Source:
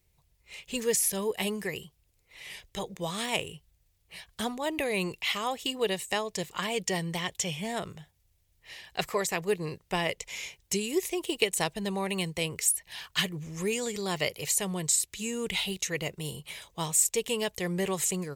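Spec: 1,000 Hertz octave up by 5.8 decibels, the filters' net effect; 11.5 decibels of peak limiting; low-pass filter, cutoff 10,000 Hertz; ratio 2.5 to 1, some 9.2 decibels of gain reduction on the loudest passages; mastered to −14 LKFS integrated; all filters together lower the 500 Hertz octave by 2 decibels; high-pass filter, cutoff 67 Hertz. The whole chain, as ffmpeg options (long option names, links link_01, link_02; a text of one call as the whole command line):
ffmpeg -i in.wav -af "highpass=67,lowpass=10000,equalizer=frequency=500:width_type=o:gain=-4.5,equalizer=frequency=1000:width_type=o:gain=8.5,acompressor=threshold=-36dB:ratio=2.5,volume=25dB,alimiter=limit=-2.5dB:level=0:latency=1" out.wav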